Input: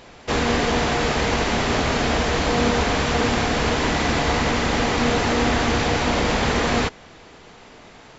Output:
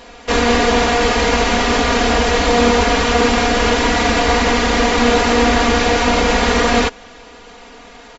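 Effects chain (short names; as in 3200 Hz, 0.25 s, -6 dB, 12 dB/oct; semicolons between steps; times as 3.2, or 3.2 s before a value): bell 160 Hz -7.5 dB 0.86 oct; comb 4.2 ms, depth 86%; gain +4 dB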